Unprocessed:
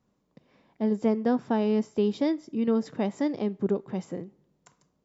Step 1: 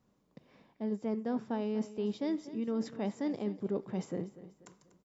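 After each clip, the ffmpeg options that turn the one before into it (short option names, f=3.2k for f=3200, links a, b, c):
-af "areverse,acompressor=threshold=-31dB:ratio=6,areverse,aecho=1:1:243|486|729|972:0.168|0.0688|0.0282|0.0116"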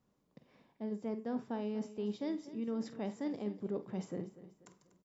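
-filter_complex "[0:a]asplit=2[a][b];[b]adelay=48,volume=-13dB[c];[a][c]amix=inputs=2:normalize=0,volume=-4dB"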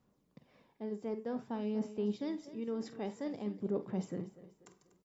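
-af "aphaser=in_gain=1:out_gain=1:delay=2.6:decay=0.32:speed=0.52:type=sinusoidal"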